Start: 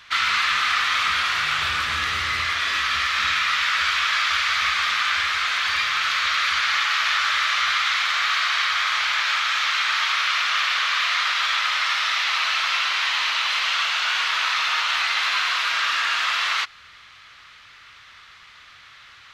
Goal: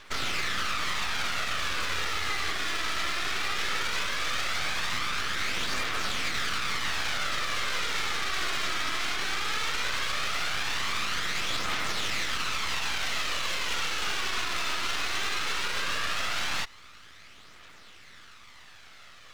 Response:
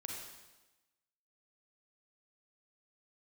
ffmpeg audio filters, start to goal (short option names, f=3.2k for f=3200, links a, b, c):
-af "aeval=exprs='max(val(0),0)':c=same,aphaser=in_gain=1:out_gain=1:delay=3.1:decay=0.33:speed=0.17:type=triangular,alimiter=limit=-16.5dB:level=0:latency=1:release=62,volume=-1dB"